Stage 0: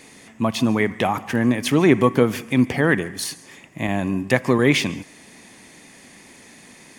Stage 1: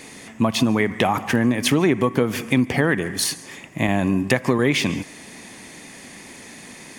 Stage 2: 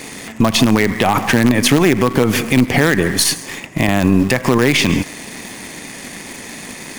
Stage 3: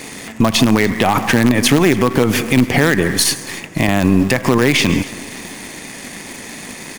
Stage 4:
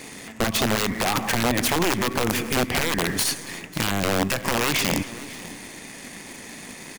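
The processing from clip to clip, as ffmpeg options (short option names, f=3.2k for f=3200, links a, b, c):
-af "acompressor=threshold=-20dB:ratio=6,volume=5.5dB"
-filter_complex "[0:a]asplit=2[a][b];[b]acrusher=bits=3:dc=4:mix=0:aa=0.000001,volume=-5.5dB[c];[a][c]amix=inputs=2:normalize=0,alimiter=level_in=9dB:limit=-1dB:release=50:level=0:latency=1,volume=-1dB"
-af "aecho=1:1:280|560|840:0.0891|0.0428|0.0205"
-af "aeval=exprs='(mod(2*val(0)+1,2)-1)/2':c=same,aecho=1:1:543:0.106,volume=-8dB"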